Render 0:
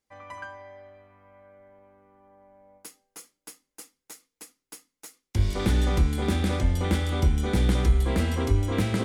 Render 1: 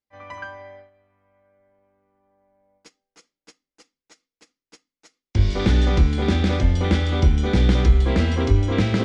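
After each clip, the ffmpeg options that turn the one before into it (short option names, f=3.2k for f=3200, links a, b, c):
-af "lowpass=f=5.9k:w=0.5412,lowpass=f=5.9k:w=1.3066,agate=range=-14dB:threshold=-46dB:ratio=16:detection=peak,equalizer=f=1k:t=o:w=0.77:g=-2.5,volume=5.5dB"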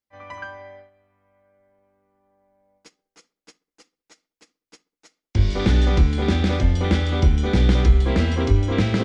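-filter_complex "[0:a]asplit=2[a][b];[b]adelay=66,lowpass=f=1.5k:p=1,volume=-23.5dB,asplit=2[c][d];[d]adelay=66,lowpass=f=1.5k:p=1,volume=0.51,asplit=2[e][f];[f]adelay=66,lowpass=f=1.5k:p=1,volume=0.51[g];[a][c][e][g]amix=inputs=4:normalize=0"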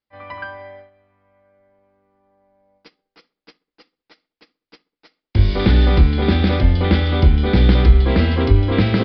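-af "aresample=11025,aresample=44100,volume=4dB"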